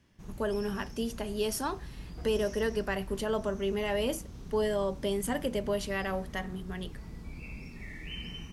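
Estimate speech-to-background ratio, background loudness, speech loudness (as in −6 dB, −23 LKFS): 12.0 dB, −45.0 LKFS, −33.0 LKFS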